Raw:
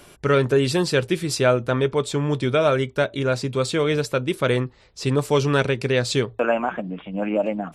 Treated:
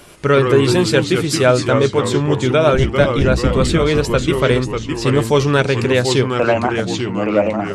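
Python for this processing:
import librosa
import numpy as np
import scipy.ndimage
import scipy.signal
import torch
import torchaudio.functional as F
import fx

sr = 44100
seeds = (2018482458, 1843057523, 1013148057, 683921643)

y = fx.octave_divider(x, sr, octaves=1, level_db=4.0, at=(2.73, 3.78))
y = fx.echo_pitch(y, sr, ms=88, semitones=-2, count=3, db_per_echo=-6.0)
y = y * librosa.db_to_amplitude(5.0)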